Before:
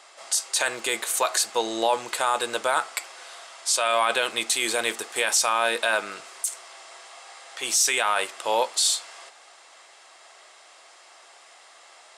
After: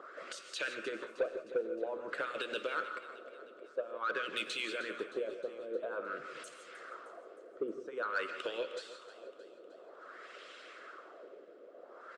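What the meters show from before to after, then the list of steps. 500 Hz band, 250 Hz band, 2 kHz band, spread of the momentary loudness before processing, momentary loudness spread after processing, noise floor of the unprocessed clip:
-9.0 dB, -8.0 dB, -12.5 dB, 20 LU, 17 LU, -52 dBFS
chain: high-pass 150 Hz 24 dB/octave; dynamic bell 2.8 kHz, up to +6 dB, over -40 dBFS, Q 1.9; in parallel at +0.5 dB: peak limiter -15.5 dBFS, peak gain reduction 9.5 dB; on the sum: FFT filter 530 Hz 0 dB, 830 Hz -28 dB, 1.4 kHz -5 dB, 2 kHz -18 dB, 3.6 kHz -11 dB, 7.9 kHz -5 dB; compression 2:1, threshold -56 dBFS, peak gain reduction 20 dB; LFO low-pass sine 0.5 Hz 440–2800 Hz; harmonic-percussive split harmonic -18 dB; saturation -36.5 dBFS, distortion -14 dB; on a send: feedback delay 310 ms, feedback 55%, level -15.5 dB; on the sum: gated-style reverb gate 190 ms rising, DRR 8 dB; trim +11 dB

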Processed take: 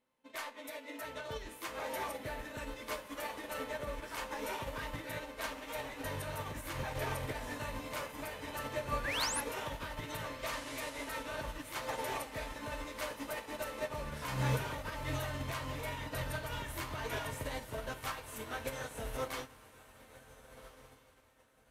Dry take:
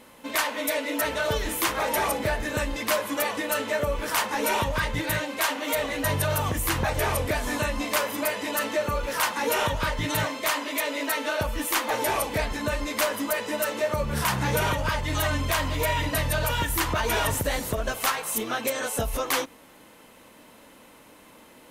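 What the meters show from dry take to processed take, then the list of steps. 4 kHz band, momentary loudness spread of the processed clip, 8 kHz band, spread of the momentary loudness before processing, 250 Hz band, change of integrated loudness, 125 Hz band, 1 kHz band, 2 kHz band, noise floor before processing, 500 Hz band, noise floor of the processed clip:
-13.5 dB, 8 LU, -15.5 dB, 3 LU, -14.0 dB, -13.5 dB, -11.5 dB, -13.0 dB, -13.5 dB, -52 dBFS, -13.5 dB, -60 dBFS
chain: treble shelf 8.6 kHz -7 dB; peak limiter -20 dBFS, peak gain reduction 5.5 dB; feedback comb 130 Hz, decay 0.45 s, harmonics all, mix 70%; painted sound rise, 9.04–9.41 s, 1.5–12 kHz -36 dBFS; feedback comb 440 Hz, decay 0.73 s, mix 60%; on a send: echo that smears into a reverb 1509 ms, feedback 57%, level -6.5 dB; on the sum: upward expansion 2.5:1, over -55 dBFS; trim +9.5 dB

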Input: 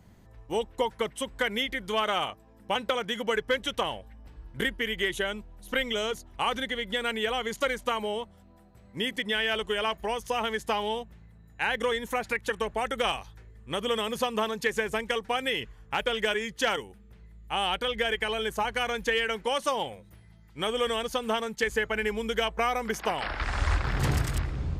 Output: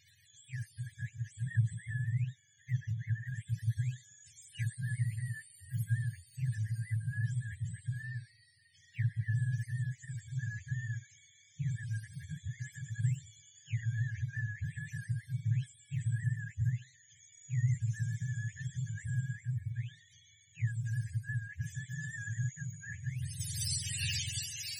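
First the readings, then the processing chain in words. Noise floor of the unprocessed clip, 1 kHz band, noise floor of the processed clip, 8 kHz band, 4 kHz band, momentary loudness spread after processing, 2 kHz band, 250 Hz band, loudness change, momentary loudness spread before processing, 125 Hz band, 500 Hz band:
-55 dBFS, under -40 dB, -64 dBFS, -1.0 dB, under -15 dB, 10 LU, -14.5 dB, no reading, -8.0 dB, 6 LU, +6.0 dB, under -40 dB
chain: spectrum inverted on a logarithmic axis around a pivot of 610 Hz; brick-wall FIR band-stop 150–1600 Hz; trim -3 dB

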